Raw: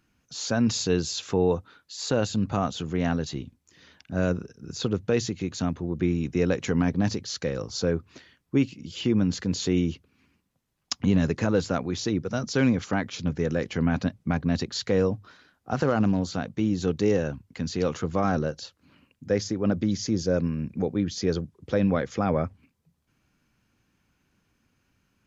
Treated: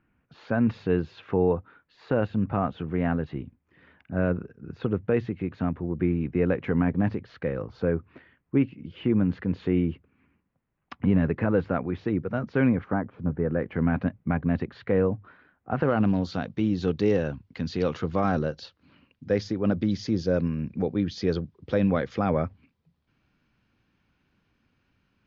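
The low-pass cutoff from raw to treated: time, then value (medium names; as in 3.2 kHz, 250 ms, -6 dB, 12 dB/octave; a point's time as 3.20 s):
low-pass 24 dB/octave
12.73 s 2.3 kHz
13.07 s 1.2 kHz
13.89 s 2.3 kHz
15.71 s 2.3 kHz
16.18 s 4.5 kHz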